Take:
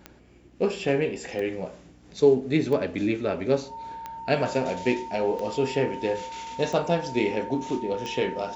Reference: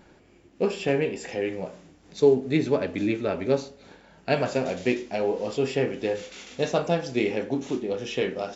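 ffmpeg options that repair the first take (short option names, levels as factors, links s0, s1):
-af "adeclick=t=4,bandreject=f=60.7:t=h:w=4,bandreject=f=121.4:t=h:w=4,bandreject=f=182.1:t=h:w=4,bandreject=f=242.8:t=h:w=4,bandreject=f=303.5:t=h:w=4,bandreject=f=910:w=30"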